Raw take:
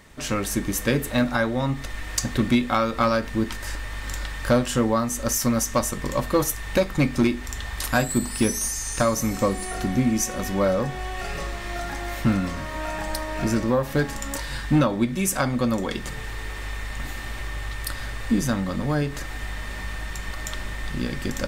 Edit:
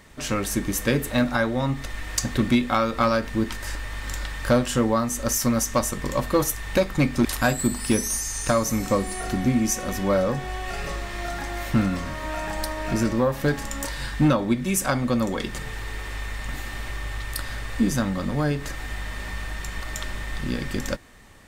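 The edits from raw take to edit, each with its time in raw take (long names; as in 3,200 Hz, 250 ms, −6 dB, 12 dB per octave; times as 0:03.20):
0:07.25–0:07.76: remove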